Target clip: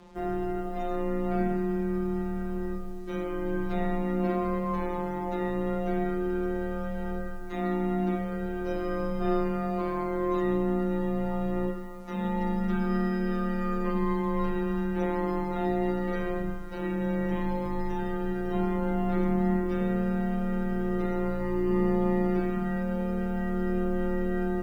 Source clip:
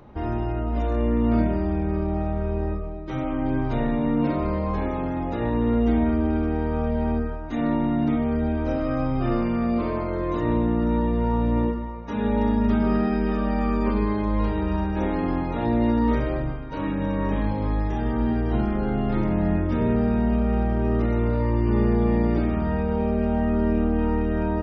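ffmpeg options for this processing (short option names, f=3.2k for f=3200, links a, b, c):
-af "acrusher=bits=8:mix=0:aa=0.5,afftfilt=real='hypot(re,im)*cos(PI*b)':imag='0':win_size=1024:overlap=0.75,afreqshift=17"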